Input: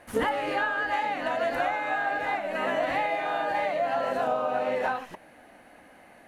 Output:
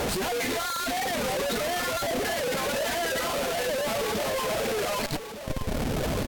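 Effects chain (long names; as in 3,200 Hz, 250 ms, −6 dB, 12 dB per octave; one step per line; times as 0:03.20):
reverb reduction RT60 1.8 s
parametric band 5,100 Hz +15 dB 0.36 octaves
reverb reduction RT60 0.71 s
brickwall limiter −23 dBFS, peak gain reduction 7 dB
time-frequency box erased 0:02.01–0:02.23, 1,000–5,500 Hz
comparator with hysteresis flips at −55.5 dBFS
parametric band 1,600 Hz −4 dB 0.86 octaves
on a send: single-tap delay 1,191 ms −10.5 dB
on the sum: pitch shifter −3 semitones
wow of a warped record 33 1/3 rpm, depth 100 cents
level +6.5 dB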